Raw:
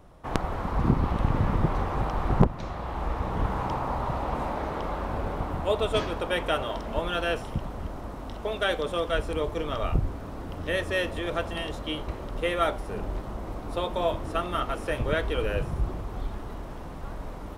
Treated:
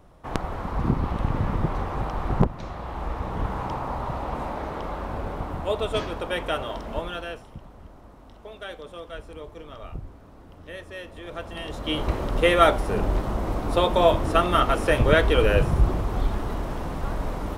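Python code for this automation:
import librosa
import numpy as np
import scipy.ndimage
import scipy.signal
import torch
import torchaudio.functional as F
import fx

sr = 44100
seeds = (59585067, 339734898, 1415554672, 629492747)

y = fx.gain(x, sr, db=fx.line((6.96, -0.5), (7.47, -11.0), (11.05, -11.0), (11.63, -2.0), (12.06, 8.5)))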